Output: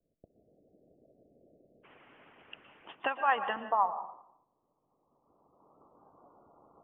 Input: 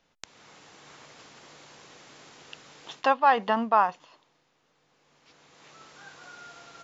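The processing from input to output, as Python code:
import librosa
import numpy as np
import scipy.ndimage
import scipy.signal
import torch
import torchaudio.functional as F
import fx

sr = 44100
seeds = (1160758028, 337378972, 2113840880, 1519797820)

y = fx.steep_lowpass(x, sr, hz=fx.steps((0.0, 670.0), (1.83, 3100.0), (3.59, 1200.0)), slope=96)
y = fx.hpss(y, sr, part='harmonic', gain_db=-15)
y = fx.rev_plate(y, sr, seeds[0], rt60_s=0.7, hf_ratio=0.65, predelay_ms=105, drr_db=10.5)
y = y * 10.0 ** (-2.0 / 20.0)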